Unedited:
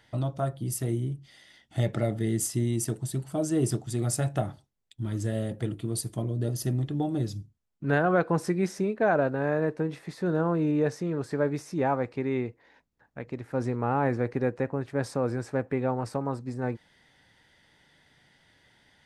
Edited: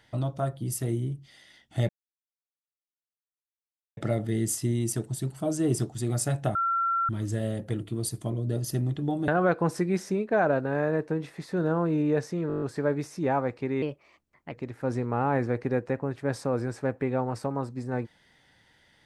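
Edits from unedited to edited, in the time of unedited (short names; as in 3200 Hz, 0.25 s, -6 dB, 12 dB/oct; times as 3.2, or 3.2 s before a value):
1.89 insert silence 2.08 s
4.47–5.01 bleep 1360 Hz -23 dBFS
7.2–7.97 cut
11.17 stutter 0.02 s, 8 plays
12.37–13.22 speed 122%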